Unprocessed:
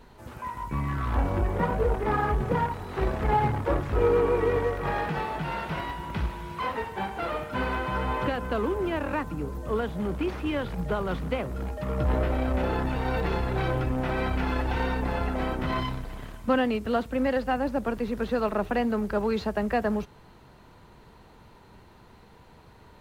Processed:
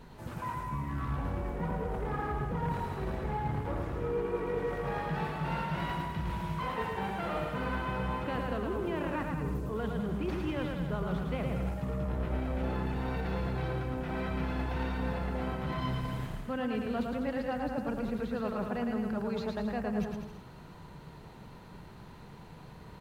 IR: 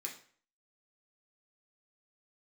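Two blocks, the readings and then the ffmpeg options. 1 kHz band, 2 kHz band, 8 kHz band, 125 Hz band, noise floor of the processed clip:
-7.0 dB, -7.0 dB, no reading, -4.0 dB, -50 dBFS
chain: -af "equalizer=f=160:t=o:w=0.67:g=8.5,areverse,acompressor=threshold=0.0282:ratio=10,areverse,aecho=1:1:110|198|268.4|324.7|369.8:0.631|0.398|0.251|0.158|0.1,volume=0.891"

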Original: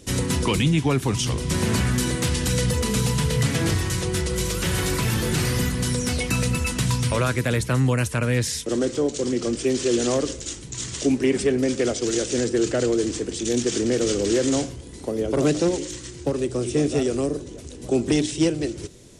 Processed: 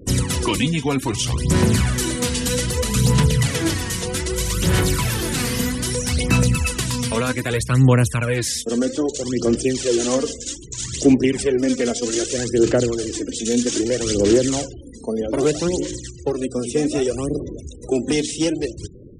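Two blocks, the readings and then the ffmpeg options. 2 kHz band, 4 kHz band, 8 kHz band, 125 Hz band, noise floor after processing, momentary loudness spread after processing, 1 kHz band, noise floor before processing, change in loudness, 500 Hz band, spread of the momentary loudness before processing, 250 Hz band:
+2.0 dB, +3.0 dB, +3.5 dB, +3.0 dB, -38 dBFS, 9 LU, +2.5 dB, -39 dBFS, +3.0 dB, +2.5 dB, 7 LU, +3.0 dB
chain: -af "highshelf=f=4500:g=3,aphaser=in_gain=1:out_gain=1:delay=4.4:decay=0.57:speed=0.63:type=sinusoidal,afftfilt=real='re*gte(hypot(re,im),0.0141)':imag='im*gte(hypot(re,im),0.0141)':win_size=1024:overlap=0.75"

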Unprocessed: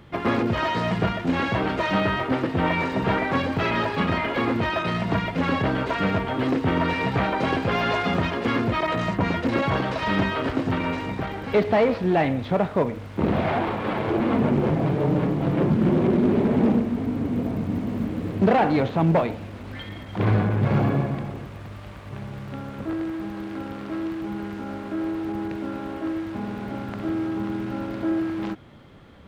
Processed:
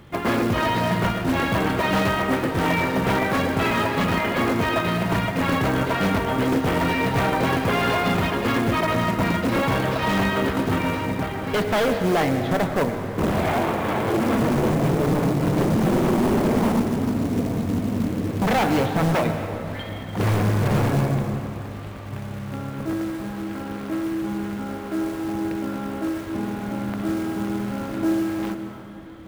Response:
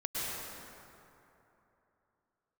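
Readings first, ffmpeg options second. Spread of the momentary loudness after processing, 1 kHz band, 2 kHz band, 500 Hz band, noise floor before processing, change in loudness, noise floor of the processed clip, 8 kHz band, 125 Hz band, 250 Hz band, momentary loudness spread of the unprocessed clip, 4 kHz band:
9 LU, +2.0 dB, +2.5 dB, +1.0 dB, -38 dBFS, +1.5 dB, -33 dBFS, no reading, +1.5 dB, +1.0 dB, 12 LU, +3.5 dB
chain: -filter_complex "[0:a]aeval=exprs='0.141*(abs(mod(val(0)/0.141+3,4)-2)-1)':c=same,acrusher=bits=5:mode=log:mix=0:aa=0.000001,asplit=2[s0][s1];[1:a]atrim=start_sample=2205[s2];[s1][s2]afir=irnorm=-1:irlink=0,volume=0.299[s3];[s0][s3]amix=inputs=2:normalize=0"

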